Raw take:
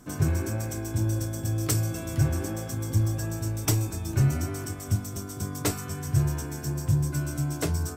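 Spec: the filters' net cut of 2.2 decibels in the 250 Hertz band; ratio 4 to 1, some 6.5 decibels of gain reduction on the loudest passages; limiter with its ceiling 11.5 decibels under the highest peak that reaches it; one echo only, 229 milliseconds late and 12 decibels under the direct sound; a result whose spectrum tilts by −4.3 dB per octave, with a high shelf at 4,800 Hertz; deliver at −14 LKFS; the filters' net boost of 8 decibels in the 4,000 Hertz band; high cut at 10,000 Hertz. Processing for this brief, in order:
low-pass filter 10,000 Hz
parametric band 250 Hz −4 dB
parametric band 4,000 Hz +7.5 dB
high-shelf EQ 4,800 Hz +6 dB
downward compressor 4 to 1, threshold −26 dBFS
brickwall limiter −23 dBFS
single-tap delay 229 ms −12 dB
level +18.5 dB

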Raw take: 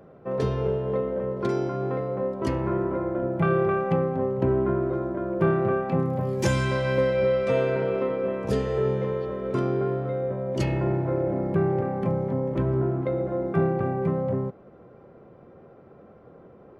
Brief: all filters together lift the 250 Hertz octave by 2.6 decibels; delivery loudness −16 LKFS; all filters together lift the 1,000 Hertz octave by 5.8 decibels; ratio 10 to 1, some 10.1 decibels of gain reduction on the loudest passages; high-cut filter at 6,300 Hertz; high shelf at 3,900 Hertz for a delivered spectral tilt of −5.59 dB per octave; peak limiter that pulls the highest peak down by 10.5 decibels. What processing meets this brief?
low-pass filter 6,300 Hz
parametric band 250 Hz +3.5 dB
parametric band 1,000 Hz +7 dB
high-shelf EQ 3,900 Hz +3 dB
downward compressor 10 to 1, threshold −26 dBFS
level +18 dB
brickwall limiter −8 dBFS

